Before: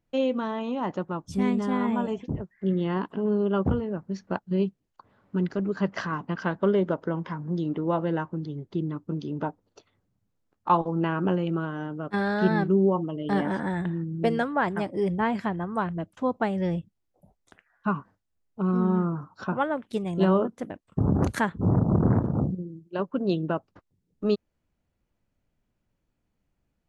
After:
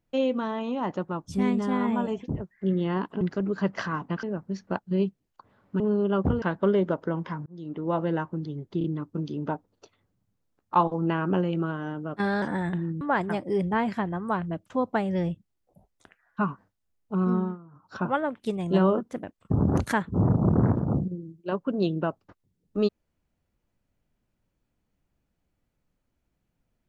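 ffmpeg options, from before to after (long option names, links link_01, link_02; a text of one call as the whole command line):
ffmpeg -i in.wav -filter_complex "[0:a]asplit=12[link_01][link_02][link_03][link_04][link_05][link_06][link_07][link_08][link_09][link_10][link_11][link_12];[link_01]atrim=end=3.212[link_13];[link_02]atrim=start=5.398:end=6.422[link_14];[link_03]atrim=start=3.828:end=5.402[link_15];[link_04]atrim=start=3.208:end=3.832[link_16];[link_05]atrim=start=6.418:end=7.46,asetpts=PTS-STARTPTS,afade=type=out:start_time=1.038:duration=0.004:curve=hsin[link_17];[link_06]atrim=start=7.46:end=8.812,asetpts=PTS-STARTPTS,afade=type=in:duration=0.53[link_18];[link_07]atrim=start=8.778:end=8.812[link_19];[link_08]atrim=start=8.778:end=12.362[link_20];[link_09]atrim=start=13.538:end=14.132[link_21];[link_10]atrim=start=14.478:end=19.05,asetpts=PTS-STARTPTS,afade=type=out:start_time=4.312:duration=0.26:silence=0.0944061[link_22];[link_11]atrim=start=19.05:end=19.18,asetpts=PTS-STARTPTS,volume=-20.5dB[link_23];[link_12]atrim=start=19.18,asetpts=PTS-STARTPTS,afade=type=in:duration=0.26:silence=0.0944061[link_24];[link_13][link_14]acrossfade=duration=0.004:curve1=hsin:curve2=hsin[link_25];[link_25][link_15]acrossfade=duration=0.004:curve1=hsin:curve2=hsin[link_26];[link_26][link_16]acrossfade=duration=0.004:curve1=hsin:curve2=hsin[link_27];[link_17][link_18]concat=n=2:v=0:a=1[link_28];[link_27][link_28]acrossfade=duration=0.004:curve1=hsin:curve2=hsin[link_29];[link_29][link_19]acrossfade=duration=0.004:curve1=hsin:curve2=hsin[link_30];[link_30][link_20]acrossfade=duration=0.004:curve1=hsin:curve2=hsin[link_31];[link_31][link_21]acrossfade=duration=0.004:curve1=hsin:curve2=hsin[link_32];[link_22][link_23][link_24]concat=n=3:v=0:a=1[link_33];[link_32][link_33]acrossfade=duration=0.004:curve1=hsin:curve2=hsin" out.wav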